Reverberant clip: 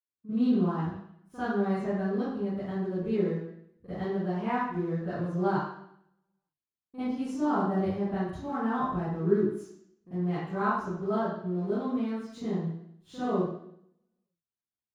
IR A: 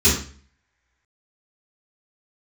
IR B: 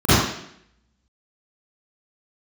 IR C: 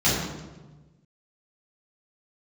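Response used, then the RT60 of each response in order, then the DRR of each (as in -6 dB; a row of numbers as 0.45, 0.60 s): B; 0.45, 0.70, 1.2 s; -10.5, -20.0, -10.0 dB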